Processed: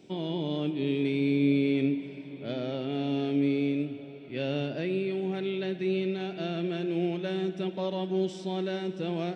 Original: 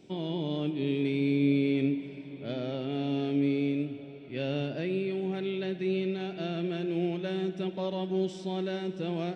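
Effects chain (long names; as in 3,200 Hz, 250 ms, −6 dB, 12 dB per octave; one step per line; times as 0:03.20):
low-shelf EQ 61 Hz −10.5 dB
level +1.5 dB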